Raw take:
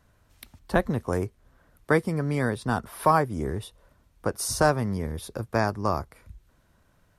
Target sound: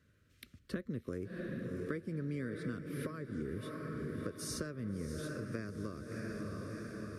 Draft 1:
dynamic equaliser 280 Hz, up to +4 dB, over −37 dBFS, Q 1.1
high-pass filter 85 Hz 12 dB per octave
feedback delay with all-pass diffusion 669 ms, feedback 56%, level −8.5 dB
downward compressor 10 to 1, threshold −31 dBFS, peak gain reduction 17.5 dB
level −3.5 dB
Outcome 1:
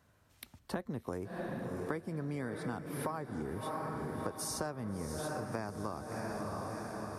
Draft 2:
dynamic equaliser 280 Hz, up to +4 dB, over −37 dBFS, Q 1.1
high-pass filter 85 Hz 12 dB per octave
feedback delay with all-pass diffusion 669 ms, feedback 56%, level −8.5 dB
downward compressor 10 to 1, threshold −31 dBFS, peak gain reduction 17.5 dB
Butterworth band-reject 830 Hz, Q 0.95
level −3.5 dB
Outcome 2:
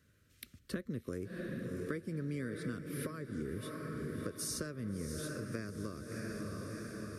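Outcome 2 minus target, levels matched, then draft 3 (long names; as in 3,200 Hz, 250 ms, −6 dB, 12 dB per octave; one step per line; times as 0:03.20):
8,000 Hz band +4.5 dB
dynamic equaliser 280 Hz, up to +4 dB, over −37 dBFS, Q 1.1
high-pass filter 85 Hz 12 dB per octave
high-shelf EQ 5,500 Hz −9.5 dB
feedback delay with all-pass diffusion 669 ms, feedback 56%, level −8.5 dB
downward compressor 10 to 1, threshold −31 dBFS, peak gain reduction 17.5 dB
Butterworth band-reject 830 Hz, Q 0.95
level −3.5 dB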